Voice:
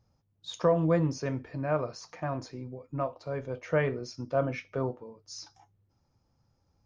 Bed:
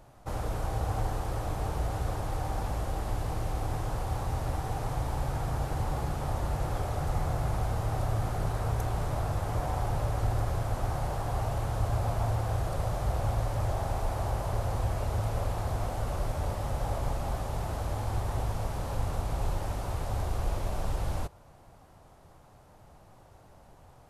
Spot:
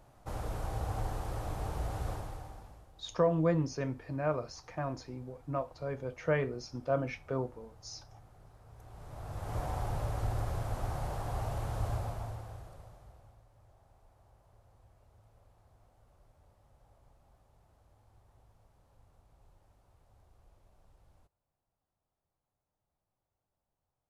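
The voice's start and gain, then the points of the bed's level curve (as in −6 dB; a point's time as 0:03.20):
2.55 s, −3.0 dB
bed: 0:02.12 −5 dB
0:02.92 −27 dB
0:08.66 −27 dB
0:09.57 −5 dB
0:11.91 −5 dB
0:13.45 −33 dB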